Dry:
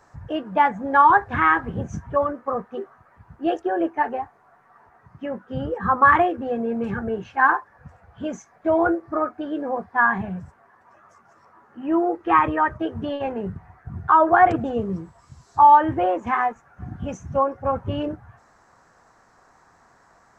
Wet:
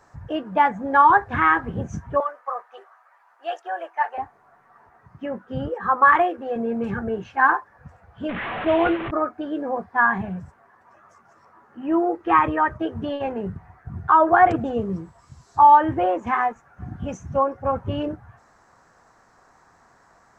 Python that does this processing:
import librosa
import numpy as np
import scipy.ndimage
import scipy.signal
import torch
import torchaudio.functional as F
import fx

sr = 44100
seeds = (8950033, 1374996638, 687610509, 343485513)

y = fx.highpass(x, sr, hz=680.0, slope=24, at=(2.2, 4.18))
y = fx.bass_treble(y, sr, bass_db=-14, treble_db=-1, at=(5.68, 6.56))
y = fx.delta_mod(y, sr, bps=16000, step_db=-23.0, at=(8.29, 9.11))